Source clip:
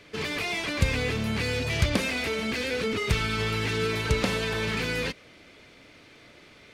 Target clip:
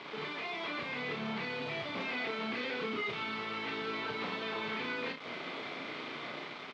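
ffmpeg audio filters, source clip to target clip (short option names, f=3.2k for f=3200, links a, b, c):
-filter_complex "[0:a]acompressor=threshold=-37dB:ratio=6,alimiter=level_in=15dB:limit=-24dB:level=0:latency=1:release=12,volume=-15dB,dynaudnorm=f=300:g=5:m=3.5dB,acrusher=bits=7:mix=0:aa=0.000001,highpass=f=170:w=0.5412,highpass=f=170:w=1.3066,equalizer=f=200:t=q:w=4:g=-7,equalizer=f=310:t=q:w=4:g=-4,equalizer=f=520:t=q:w=4:g=-4,equalizer=f=1.1k:t=q:w=4:g=3,equalizer=f=1.7k:t=q:w=4:g=-5,equalizer=f=2.7k:t=q:w=4:g=-5,lowpass=f=3.5k:w=0.5412,lowpass=f=3.5k:w=1.3066,asplit=2[a][b];[b]aecho=0:1:33|59:0.631|0.266[c];[a][c]amix=inputs=2:normalize=0,volume=8.5dB"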